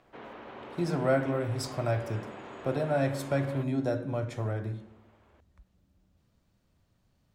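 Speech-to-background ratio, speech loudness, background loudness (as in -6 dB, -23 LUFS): 14.0 dB, -31.0 LUFS, -45.0 LUFS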